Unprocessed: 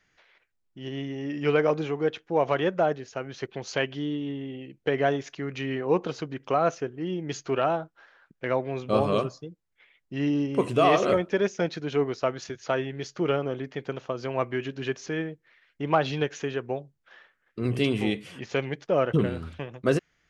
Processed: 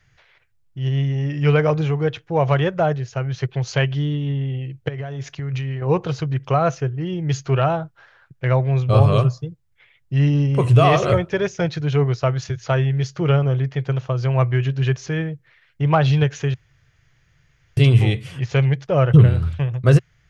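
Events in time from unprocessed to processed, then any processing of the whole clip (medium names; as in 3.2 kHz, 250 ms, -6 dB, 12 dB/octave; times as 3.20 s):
4.88–5.82 s: compression 8:1, threshold -34 dBFS
16.54–17.77 s: room tone
whole clip: resonant low shelf 170 Hz +10 dB, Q 3; trim +5 dB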